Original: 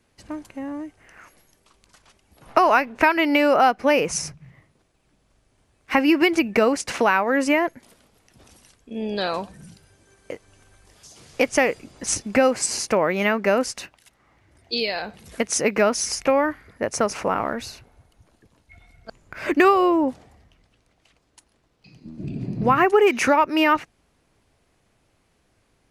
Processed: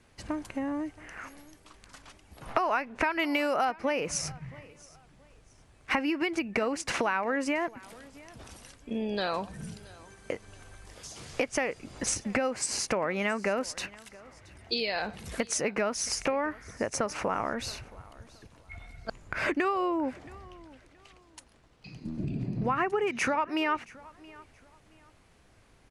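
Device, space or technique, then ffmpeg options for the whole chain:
ASMR close-microphone chain: -filter_complex "[0:a]lowpass=f=11k:w=0.5412,lowpass=f=11k:w=1.3066,lowshelf=f=160:g=6.5,acompressor=threshold=-31dB:ratio=4,highshelf=f=8.8k:g=4,asettb=1/sr,asplit=3[a][b][c];[a]atrim=end=3.194[d];[b]atrim=start=3.19:end=3.65,asetpts=PTS-STARTPTS,afade=t=in:d=0.004:c=qsin,afade=t=out:st=0.456:d=0.004:c=qsin,aemphasis=mode=production:type=50kf[e];[c]atrim=start=3.646[f];[d][e]acrossfade=d=0.004:c1=hsin:c2=qsin[g];[g][f]acrossfade=d=0.004:c1=qsin:c2=hsin,equalizer=f=1.4k:t=o:w=2.9:g=4.5,aecho=1:1:674|1348:0.0794|0.0214"

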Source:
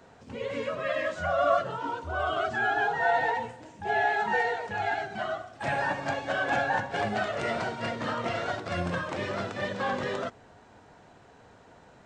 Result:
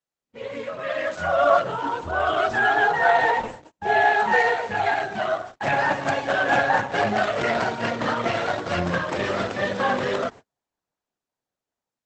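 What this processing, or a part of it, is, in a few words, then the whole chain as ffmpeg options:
video call: -af "highpass=f=130:p=1,dynaudnorm=f=740:g=3:m=8dB,agate=range=-43dB:threshold=-37dB:ratio=16:detection=peak" -ar 48000 -c:a libopus -b:a 12k

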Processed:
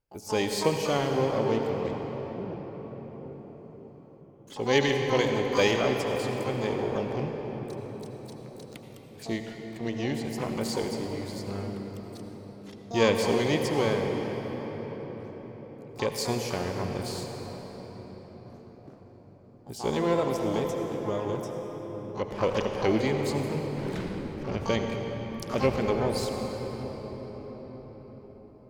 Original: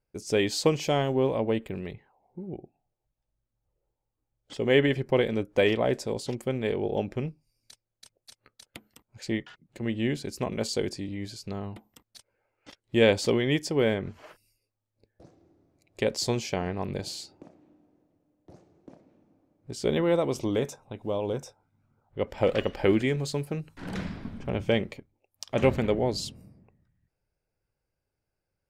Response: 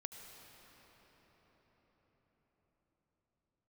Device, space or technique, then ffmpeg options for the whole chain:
shimmer-style reverb: -filter_complex "[0:a]asettb=1/sr,asplit=3[a][b][c];[a]atrim=end=4.754[d];[b]atrim=start=4.75:end=5.81,asetpts=PTS-STARTPTS,afade=t=in:d=0.004:c=qsin,afade=t=out:st=1.056:d=0.004:c=qsin,highshelf=f=2.6k:g=8.5[e];[c]atrim=start=5.806[f];[d][e]acrossfade=d=0.004:c1=hsin:c2=qsin[g];[g][f]acrossfade=d=0.004:c1=qsin:c2=hsin,asplit=2[h][i];[i]asetrate=88200,aresample=44100,atempo=0.5,volume=-9dB[j];[h][j]amix=inputs=2:normalize=0[k];[1:a]atrim=start_sample=2205[l];[k][l]afir=irnorm=-1:irlink=0,volume=2dB"

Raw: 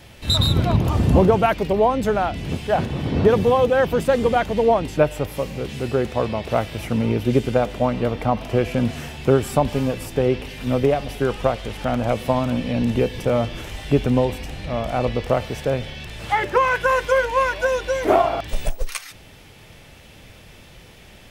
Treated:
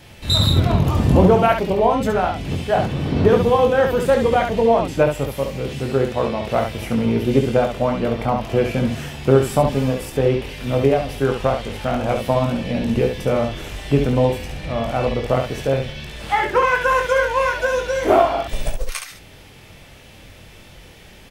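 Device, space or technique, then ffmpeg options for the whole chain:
slapback doubling: -filter_complex "[0:a]asplit=3[a][b][c];[b]adelay=22,volume=-6dB[d];[c]adelay=69,volume=-5.5dB[e];[a][d][e]amix=inputs=3:normalize=0"

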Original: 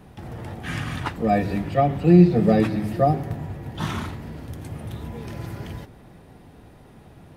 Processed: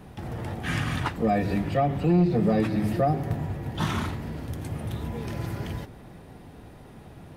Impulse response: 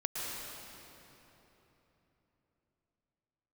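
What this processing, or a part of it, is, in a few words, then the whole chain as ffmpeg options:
soft clipper into limiter: -af "asoftclip=type=tanh:threshold=-9dB,alimiter=limit=-16.5dB:level=0:latency=1:release=245,volume=1.5dB"

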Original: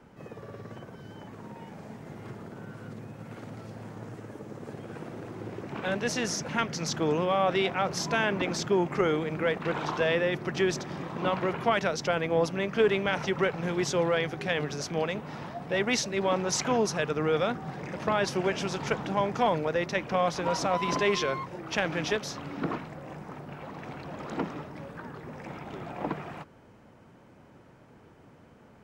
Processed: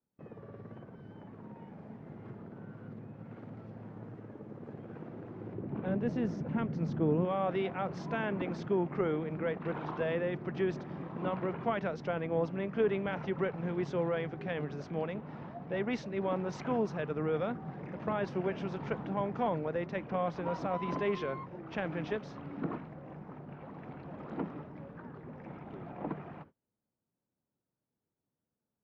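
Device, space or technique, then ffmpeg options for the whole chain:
phone in a pocket: -filter_complex "[0:a]agate=range=-30dB:threshold=-47dB:ratio=16:detection=peak,lowpass=3.3k,equalizer=f=200:t=o:w=1.6:g=3.5,highshelf=f=2.1k:g=-9,asettb=1/sr,asplit=3[a][b][c];[a]atrim=end=5.544[d];[b]atrim=start=5.54:end=7.25,asetpts=PTS-STARTPTS,afade=t=in:d=0.004:c=qsin,afade=t=out:st=1.706:d=0.004:c=qsin,tiltshelf=f=640:g=6.5[e];[c]atrim=start=7.246[f];[d][e]acrossfade=d=0.004:c1=hsin:c2=qsin[g];[g][f]acrossfade=d=0.004:c1=qsin:c2=hsin,volume=-6.5dB"

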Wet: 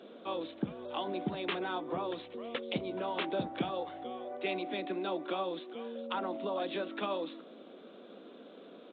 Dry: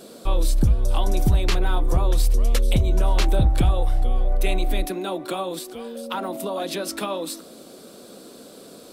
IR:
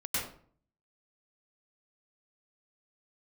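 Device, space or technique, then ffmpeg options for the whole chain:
Bluetooth headset: -af "highpass=f=200:w=0.5412,highpass=f=200:w=1.3066,aresample=8000,aresample=44100,volume=-7dB" -ar 16000 -c:a sbc -b:a 64k

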